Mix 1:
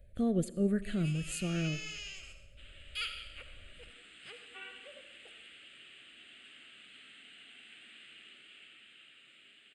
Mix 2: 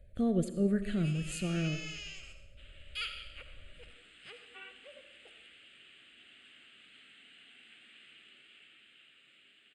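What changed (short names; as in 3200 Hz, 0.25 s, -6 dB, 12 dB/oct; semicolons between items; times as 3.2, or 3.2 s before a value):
speech: send +7.0 dB; second sound: send -9.0 dB; master: add high shelf 10000 Hz -8 dB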